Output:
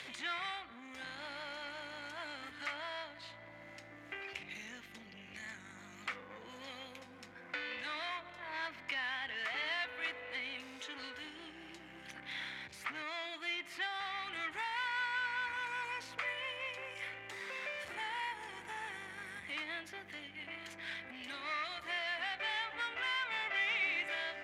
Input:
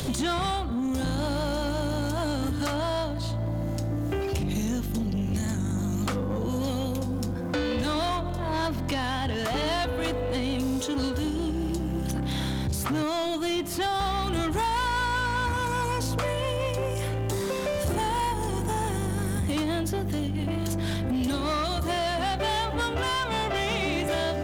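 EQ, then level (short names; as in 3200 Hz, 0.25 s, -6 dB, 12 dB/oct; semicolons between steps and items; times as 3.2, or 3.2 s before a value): band-pass 2100 Hz, Q 3.5; +1.5 dB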